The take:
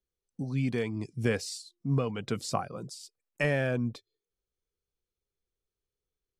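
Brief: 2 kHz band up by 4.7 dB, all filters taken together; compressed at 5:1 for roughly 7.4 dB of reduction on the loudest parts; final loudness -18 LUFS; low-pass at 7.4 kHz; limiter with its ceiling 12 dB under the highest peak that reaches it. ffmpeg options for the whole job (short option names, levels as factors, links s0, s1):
-af "lowpass=7400,equalizer=f=2000:t=o:g=5.5,acompressor=threshold=0.0355:ratio=5,volume=10,alimiter=limit=0.473:level=0:latency=1"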